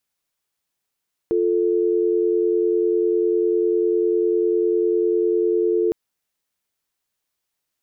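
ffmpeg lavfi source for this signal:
-f lavfi -i "aevalsrc='0.112*(sin(2*PI*350*t)+sin(2*PI*440*t))':d=4.61:s=44100"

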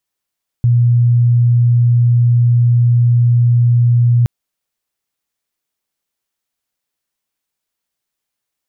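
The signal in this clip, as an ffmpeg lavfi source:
-f lavfi -i "aevalsrc='0.422*sin(2*PI*120*t)':d=3.62:s=44100"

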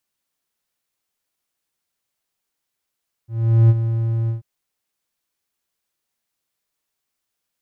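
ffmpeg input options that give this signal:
-f lavfi -i "aevalsrc='0.531*(1-4*abs(mod(114*t+0.25,1)-0.5))':d=1.138:s=44100,afade=t=in:d=0.417,afade=t=out:st=0.417:d=0.039:silence=0.316,afade=t=out:st=1.01:d=0.128"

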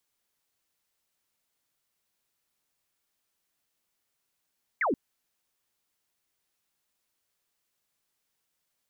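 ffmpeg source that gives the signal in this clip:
-f lavfi -i "aevalsrc='0.0668*clip(t/0.002,0,1)*clip((0.13-t)/0.002,0,1)*sin(2*PI*2300*0.13/log(220/2300)*(exp(log(220/2300)*t/0.13)-1))':d=0.13:s=44100"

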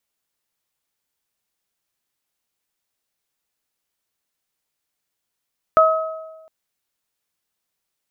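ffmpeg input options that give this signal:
-f lavfi -i "aevalsrc='0.282*pow(10,-3*t/1.23)*sin(2*PI*639*t)+0.335*pow(10,-3*t/0.85)*sin(2*PI*1278*t)':d=0.71:s=44100"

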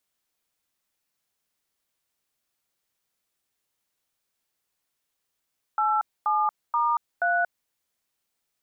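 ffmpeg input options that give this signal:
-f lavfi -i "aevalsrc='0.0708*clip(min(mod(t,0.479),0.232-mod(t,0.479))/0.002,0,1)*(eq(floor(t/0.479),0)*(sin(2*PI*852*mod(t,0.479))+sin(2*PI*1336*mod(t,0.479)))+eq(floor(t/0.479),1)*(sin(2*PI*852*mod(t,0.479))+sin(2*PI*1209*mod(t,0.479)))+eq(floor(t/0.479),2)*(sin(2*PI*941*mod(t,0.479))+sin(2*PI*1209*mod(t,0.479)))+eq(floor(t/0.479),3)*(sin(2*PI*697*mod(t,0.479))+sin(2*PI*1477*mod(t,0.479))))':d=1.916:s=44100"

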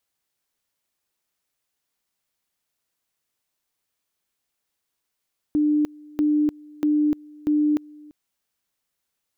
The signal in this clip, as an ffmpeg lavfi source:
-f lavfi -i "aevalsrc='pow(10,(-16.5-25*gte(mod(t,0.64),0.3))/20)*sin(2*PI*299*t)':d=2.56:s=44100"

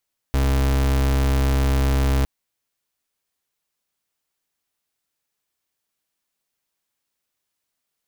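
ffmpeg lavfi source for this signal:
-f lavfi -i "aevalsrc='0.119*(2*lt(mod(67.5*t,1),0.37)-1)':d=1.91:s=44100"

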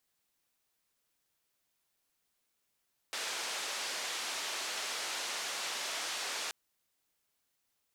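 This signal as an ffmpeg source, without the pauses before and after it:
-f lavfi -i "anoisesrc=c=white:d=3.38:r=44100:seed=1,highpass=f=470,lowpass=f=6000,volume=-27.4dB"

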